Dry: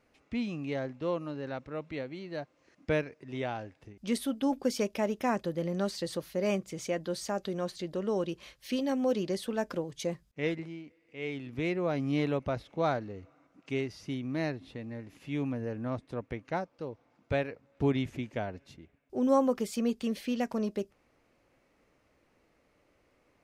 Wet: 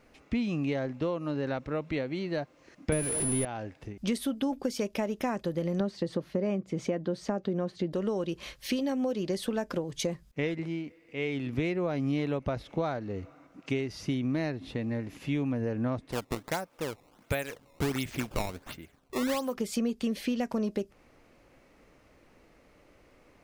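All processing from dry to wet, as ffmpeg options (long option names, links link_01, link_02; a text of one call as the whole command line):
ffmpeg -i in.wav -filter_complex "[0:a]asettb=1/sr,asplit=3[link_01][link_02][link_03];[link_01]atrim=end=2.924[link_04];[link_02]atrim=start=2.92:end=3.45,asetpts=PTS-STARTPTS,afade=type=in:duration=0.004:curve=qsin,afade=type=out:start_time=0.526:duration=0.004:curve=qsin,aeval=exprs='val(0)+0.5*0.0251*sgn(val(0))':channel_layout=same,lowshelf=frequency=490:gain=8,aeval=exprs='val(0)+0.0501*sin(2*PI*10000*n/s)':channel_layout=same[link_05];[link_03]atrim=start=3.446[link_06];[link_04][link_05]acrossfade=duration=0.004:curve1=hsin:curve2=qsin[link_07];[link_07][link_06]acrossfade=duration=0.004:curve1=qsin:curve2=hsin,asettb=1/sr,asplit=3[link_08][link_09][link_10];[link_08]atrim=end=5.804[link_11];[link_09]atrim=start=5.8:end=7.93,asetpts=PTS-STARTPTS,afade=type=in:duration=0.004:curve=qsin,afade=type=out:start_time=2.126:duration=0.004:curve=qsin,highpass=200,aemphasis=mode=reproduction:type=riaa[link_12];[link_10]atrim=start=7.926[link_13];[link_11][link_12]acrossfade=duration=0.004:curve1=hsin:curve2=qsin[link_14];[link_14][link_13]acrossfade=duration=0.004:curve1=qsin:curve2=hsin,asettb=1/sr,asplit=3[link_15][link_16][link_17];[link_15]atrim=end=16.124[link_18];[link_16]atrim=start=16.12:end=19.55,asetpts=PTS-STARTPTS,afade=type=in:duration=0.004:curve=qsin,afade=type=out:start_time=3.426:duration=0.004:curve=qsin,tiltshelf=frequency=940:gain=-5.5,acrusher=samples=16:mix=1:aa=0.000001:lfo=1:lforange=25.6:lforate=1.4[link_19];[link_17]atrim=start=19.546[link_20];[link_18][link_19]acrossfade=duration=0.004:curve1=hsin:curve2=qsin[link_21];[link_21][link_20]acrossfade=duration=0.004:curve1=qsin:curve2=hsin,equalizer=frequency=85:width_type=o:width=1.8:gain=-5,acompressor=threshold=-37dB:ratio=6,lowshelf=frequency=170:gain=7.5,volume=8dB" out.wav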